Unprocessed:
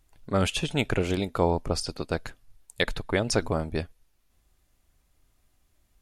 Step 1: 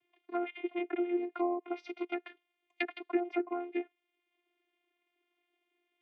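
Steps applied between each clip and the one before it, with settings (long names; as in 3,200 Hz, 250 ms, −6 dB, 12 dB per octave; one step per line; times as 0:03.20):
low-pass with resonance 2,600 Hz, resonance Q 8
channel vocoder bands 16, saw 351 Hz
treble cut that deepens with the level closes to 930 Hz, closed at −19.5 dBFS
level −8.5 dB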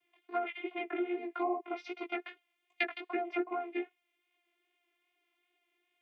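low-shelf EQ 410 Hz −9 dB
chorus effect 2.5 Hz, delay 15.5 ms, depth 3.9 ms
level +6.5 dB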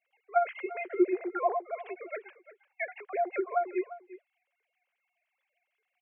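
three sine waves on the formant tracks
single-tap delay 348 ms −16.5 dB
level +5 dB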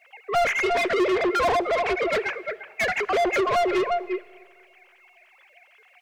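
mid-hump overdrive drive 36 dB, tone 2,800 Hz, clips at −13.5 dBFS
on a send at −20 dB: convolution reverb RT60 2.0 s, pre-delay 5 ms
on the sum: level −1 dB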